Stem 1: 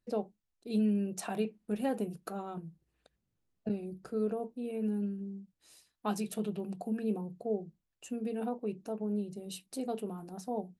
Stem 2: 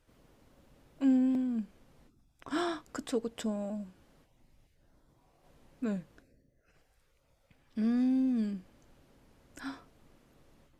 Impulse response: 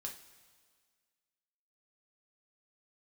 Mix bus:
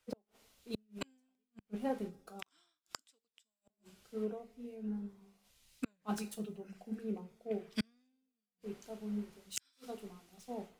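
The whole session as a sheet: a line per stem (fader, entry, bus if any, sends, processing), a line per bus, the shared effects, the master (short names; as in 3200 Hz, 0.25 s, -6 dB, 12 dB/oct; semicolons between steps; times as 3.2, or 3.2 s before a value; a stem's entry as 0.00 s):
-3.5 dB, 0.00 s, send -5.5 dB, median filter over 3 samples; reverb removal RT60 0.75 s; auto duck -10 dB, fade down 2.00 s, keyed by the second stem
+2.0 dB, 0.00 s, send -9 dB, tilt shelf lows -9 dB, about 770 Hz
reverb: on, pre-delay 3 ms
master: notch 1700 Hz, Q 15; flipped gate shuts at -28 dBFS, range -39 dB; three-band expander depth 100%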